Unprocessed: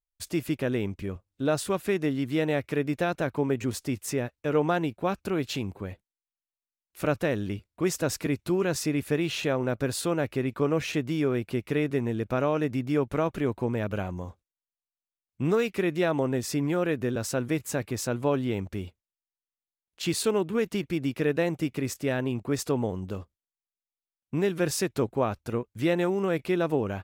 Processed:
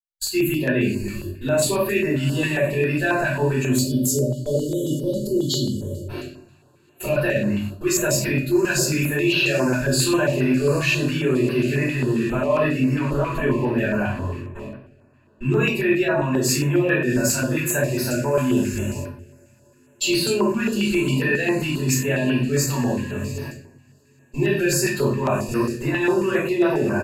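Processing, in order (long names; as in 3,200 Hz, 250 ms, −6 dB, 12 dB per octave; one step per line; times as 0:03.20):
spectral dynamics exaggerated over time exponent 1.5
tilt shelving filter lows −5.5 dB, about 660 Hz
brickwall limiter −25 dBFS, peak gain reduction 10 dB
on a send: feedback delay with all-pass diffusion 790 ms, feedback 60%, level −14 dB
on the sum: time-frequency box erased 0:03.72–0:06.08, 610–2,900 Hz
noise gate with hold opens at −36 dBFS
EQ curve with evenly spaced ripples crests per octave 1.4, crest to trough 12 dB
rectangular room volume 71 cubic metres, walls mixed, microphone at 3.9 metres
reversed playback
downward compressor, threshold −15 dBFS, peak gain reduction 7 dB
reversed playback
double-tracking delay 23 ms −11 dB
notch on a step sequencer 7.4 Hz 460–7,200 Hz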